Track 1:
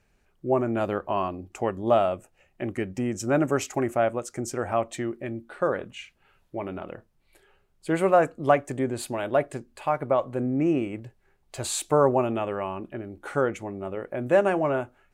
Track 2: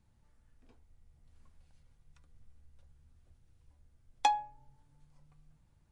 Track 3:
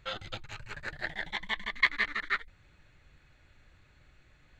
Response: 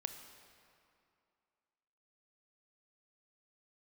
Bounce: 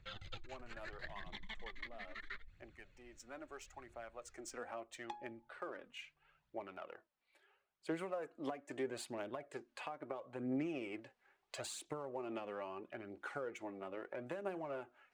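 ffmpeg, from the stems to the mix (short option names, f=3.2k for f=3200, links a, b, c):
-filter_complex "[0:a]adynamicsmooth=sensitivity=8:basefreq=4.7k,afade=t=in:st=3.98:d=0.69:silence=0.223872,afade=t=in:st=7.83:d=0.25:silence=0.421697,asplit=2[a][b];[1:a]aemphasis=mode=reproduction:type=riaa,adelay=850,volume=-9.5dB[c];[2:a]lowpass=f=1.7k:p=1,equalizer=f=1k:w=0.36:g=-11.5,volume=2.5dB[d];[b]apad=whole_len=202711[e];[d][e]sidechaincompress=threshold=-40dB:ratio=8:attack=23:release=586[f];[a][c]amix=inputs=2:normalize=0,highpass=f=490:p=1,acompressor=threshold=-27dB:ratio=6,volume=0dB[g];[f][g]amix=inputs=2:normalize=0,lowshelf=f=470:g=-10.5,acrossover=split=400[h][i];[i]acompressor=threshold=-46dB:ratio=10[j];[h][j]amix=inputs=2:normalize=0,aphaser=in_gain=1:out_gain=1:delay=4.3:decay=0.45:speed=0.76:type=triangular"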